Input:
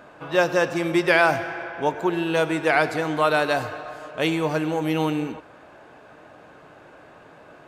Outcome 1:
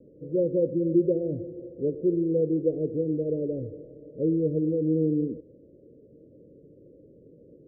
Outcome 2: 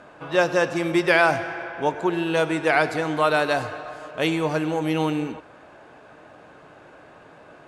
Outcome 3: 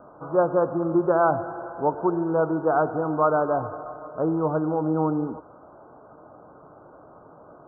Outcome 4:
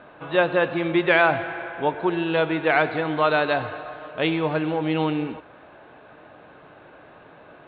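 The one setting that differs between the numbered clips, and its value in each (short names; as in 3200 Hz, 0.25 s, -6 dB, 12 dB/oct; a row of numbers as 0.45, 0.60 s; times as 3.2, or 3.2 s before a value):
steep low-pass, frequency: 530, 12000, 1400, 4100 Hz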